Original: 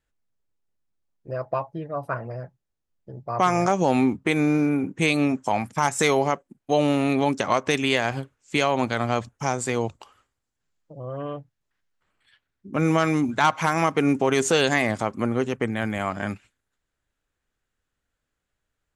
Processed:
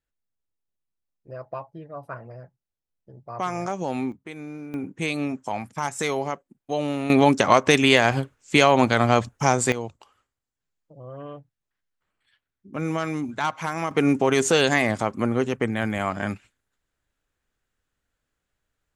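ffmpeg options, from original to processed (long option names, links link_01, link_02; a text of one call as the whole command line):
ffmpeg -i in.wav -af "asetnsamples=nb_out_samples=441:pad=0,asendcmd='4.12 volume volume -16dB;4.74 volume volume -5.5dB;7.1 volume volume 5.5dB;9.72 volume volume -6dB;13.91 volume volume 1dB',volume=-7.5dB" out.wav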